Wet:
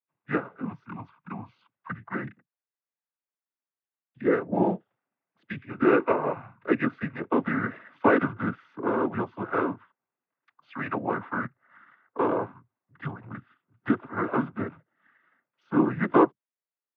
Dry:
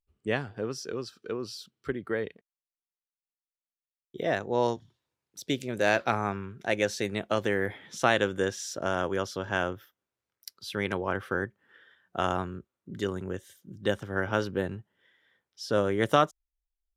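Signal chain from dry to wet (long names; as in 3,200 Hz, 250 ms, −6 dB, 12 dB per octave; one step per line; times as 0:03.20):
single-sideband voice off tune −260 Hz 470–2,300 Hz
dynamic equaliser 380 Hz, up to +5 dB, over −40 dBFS, Q 0.98
cochlear-implant simulation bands 16
level +2.5 dB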